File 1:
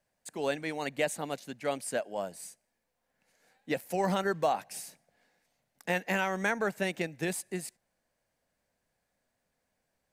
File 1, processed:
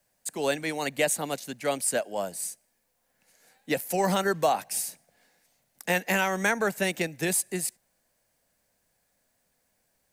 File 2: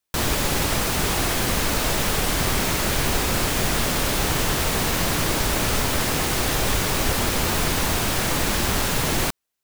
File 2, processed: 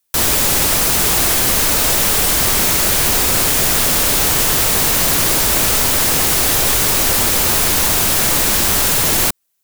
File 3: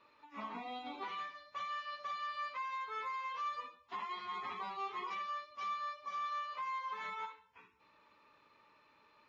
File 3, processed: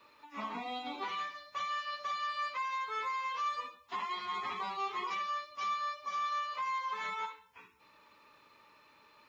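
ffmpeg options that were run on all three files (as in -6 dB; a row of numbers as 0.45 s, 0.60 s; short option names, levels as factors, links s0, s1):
-filter_complex "[0:a]highshelf=f=5800:g=11,acrossover=split=320|990|1600[s0][s1][s2][s3];[s0]asoftclip=type=tanh:threshold=0.0668[s4];[s4][s1][s2][s3]amix=inputs=4:normalize=0,volume=1.58"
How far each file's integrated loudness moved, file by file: +5.0 LU, +9.5 LU, +4.5 LU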